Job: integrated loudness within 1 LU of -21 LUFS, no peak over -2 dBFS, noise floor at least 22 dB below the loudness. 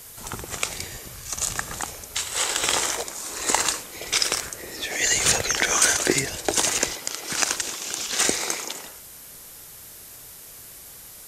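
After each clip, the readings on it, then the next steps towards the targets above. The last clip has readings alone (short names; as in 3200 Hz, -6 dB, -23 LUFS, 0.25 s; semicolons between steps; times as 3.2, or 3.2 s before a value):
noise floor -43 dBFS; noise floor target -45 dBFS; loudness -23.0 LUFS; peak -2.5 dBFS; loudness target -21.0 LUFS
-> denoiser 6 dB, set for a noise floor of -43 dBFS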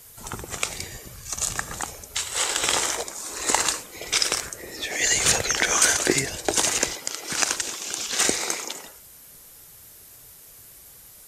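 noise floor -48 dBFS; loudness -23.5 LUFS; peak -2.5 dBFS; loudness target -21.0 LUFS
-> gain +2.5 dB; limiter -2 dBFS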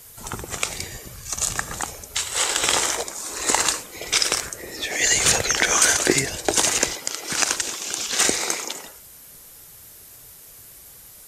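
loudness -21.0 LUFS; peak -2.0 dBFS; noise floor -45 dBFS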